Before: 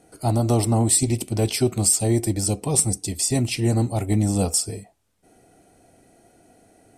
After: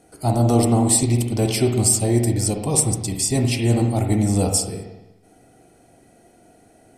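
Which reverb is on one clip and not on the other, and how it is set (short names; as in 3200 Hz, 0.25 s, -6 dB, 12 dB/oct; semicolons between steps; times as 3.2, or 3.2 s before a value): spring tank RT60 1 s, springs 42/59 ms, chirp 65 ms, DRR 3.5 dB; gain +1 dB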